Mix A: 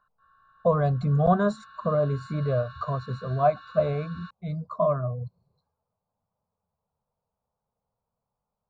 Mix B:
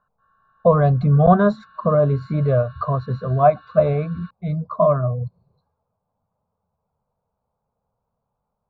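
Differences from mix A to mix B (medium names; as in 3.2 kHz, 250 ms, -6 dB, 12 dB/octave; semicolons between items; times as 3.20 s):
speech +8.0 dB; master: add distance through air 220 m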